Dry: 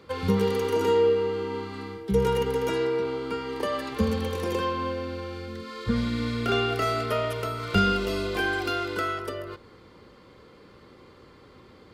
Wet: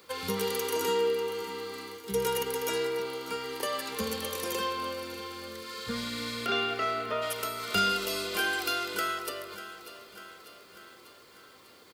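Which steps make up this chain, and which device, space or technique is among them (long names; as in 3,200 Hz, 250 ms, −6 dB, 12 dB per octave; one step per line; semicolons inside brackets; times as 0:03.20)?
0:06.45–0:07.21: low-pass filter 4,400 Hz → 1,800 Hz 12 dB per octave
turntable without a phono preamp (RIAA equalisation recording; white noise bed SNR 33 dB)
repeating echo 595 ms, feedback 59%, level −15 dB
level −3.5 dB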